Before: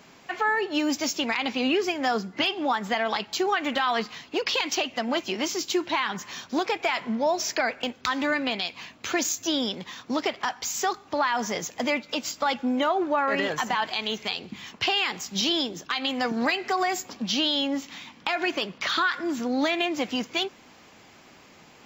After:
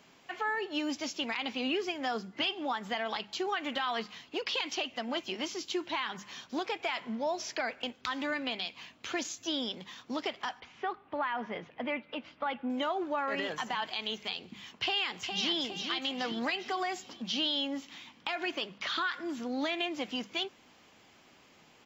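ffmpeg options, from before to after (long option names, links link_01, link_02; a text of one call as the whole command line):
ffmpeg -i in.wav -filter_complex "[0:a]asettb=1/sr,asplit=3[link_01][link_02][link_03];[link_01]atrim=end=10.604[link_04];[link_02]atrim=start=10.6:end=12.7,asetpts=PTS-STARTPTS,afade=type=in:duration=0.004:curve=qsin,afade=type=out:start_time=2.096:duration=0.004:curve=qsin,lowpass=frequency=2700:width=0.5412,lowpass=frequency=2700:width=1.3066[link_05];[link_03]atrim=start=12.696[link_06];[link_04][link_05]acrossfade=duration=0.004:curve1=hsin:curve2=qsin[link_07];[link_07][link_06]acrossfade=duration=0.004:curve1=qsin:curve2=hsin,asplit=2[link_08][link_09];[link_09]afade=type=in:start_time=14.81:duration=0.01,afade=type=out:start_time=15.57:duration=0.01,aecho=0:1:410|820|1230|1640|2050|2460:0.501187|0.250594|0.125297|0.0626484|0.0313242|0.0156621[link_10];[link_08][link_10]amix=inputs=2:normalize=0,bandreject=frequency=50:width_type=h:width=6,bandreject=frequency=100:width_type=h:width=6,bandreject=frequency=150:width_type=h:width=6,bandreject=frequency=200:width_type=h:width=6,acrossover=split=6900[link_11][link_12];[link_12]acompressor=threshold=-55dB:ratio=4:attack=1:release=60[link_13];[link_11][link_13]amix=inputs=2:normalize=0,equalizer=frequency=3100:width=3.6:gain=4,volume=-8.5dB" out.wav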